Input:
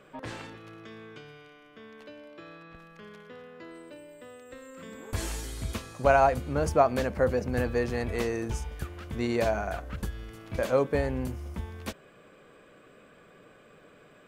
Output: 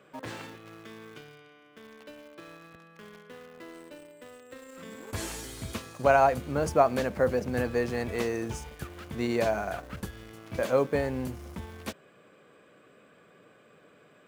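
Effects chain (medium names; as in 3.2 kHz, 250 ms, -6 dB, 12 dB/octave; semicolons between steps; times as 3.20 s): high-pass 99 Hz 12 dB/octave; in parallel at -9.5 dB: bit crusher 7-bit; on the sum: trim -2.5 dB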